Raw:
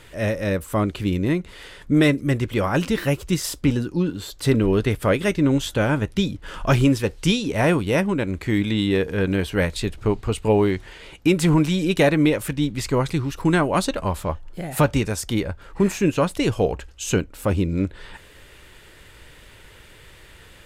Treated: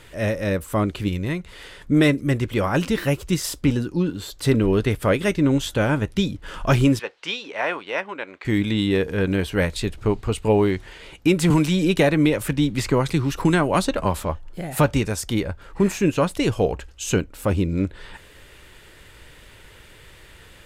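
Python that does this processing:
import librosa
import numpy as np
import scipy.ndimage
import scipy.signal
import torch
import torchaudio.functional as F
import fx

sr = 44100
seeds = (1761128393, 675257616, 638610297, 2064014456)

y = fx.peak_eq(x, sr, hz=300.0, db=-8.0, octaves=1.3, at=(1.08, 1.52))
y = fx.bandpass_edges(y, sr, low_hz=720.0, high_hz=3300.0, at=(6.99, 8.45))
y = fx.band_squash(y, sr, depth_pct=70, at=(11.5, 14.25))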